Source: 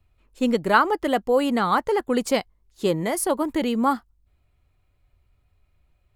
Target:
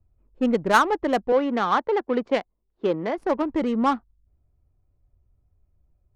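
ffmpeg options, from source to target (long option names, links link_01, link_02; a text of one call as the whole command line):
ffmpeg -i in.wav -filter_complex "[0:a]adynamicsmooth=sensitivity=1.5:basefreq=700,asettb=1/sr,asplit=3[link_01][link_02][link_03];[link_01]atrim=end=1.324[link_04];[link_02]atrim=start=1.32:end=3.18,asetpts=PTS-STARTPTS,afade=type=in:duration=0.004:curve=qsin,afade=type=out:start_time=1.856:duration=0.004:curve=qsin,acrossover=split=210 5700:gain=0.224 1 0.0891[link_05][link_06][link_07];[link_05][link_06][link_07]amix=inputs=3:normalize=0[link_08];[link_03]atrim=start=3.176[link_09];[link_04][link_08]acrossfade=duration=0.004:curve1=hsin:curve2=qsin[link_10];[link_10][link_09]acrossfade=duration=0.004:curve1=qsin:curve2=hsin" out.wav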